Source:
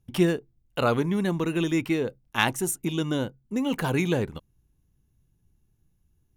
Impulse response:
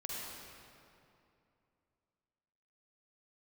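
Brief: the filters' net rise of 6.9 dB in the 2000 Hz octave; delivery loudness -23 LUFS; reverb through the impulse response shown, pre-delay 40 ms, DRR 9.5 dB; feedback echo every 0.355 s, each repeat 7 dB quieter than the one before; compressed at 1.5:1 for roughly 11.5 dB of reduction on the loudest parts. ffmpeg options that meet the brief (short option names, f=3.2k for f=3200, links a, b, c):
-filter_complex "[0:a]equalizer=f=2k:t=o:g=9,acompressor=threshold=-46dB:ratio=1.5,aecho=1:1:355|710|1065|1420|1775:0.447|0.201|0.0905|0.0407|0.0183,asplit=2[a][b];[1:a]atrim=start_sample=2205,adelay=40[c];[b][c]afir=irnorm=-1:irlink=0,volume=-10.5dB[d];[a][d]amix=inputs=2:normalize=0,volume=10dB"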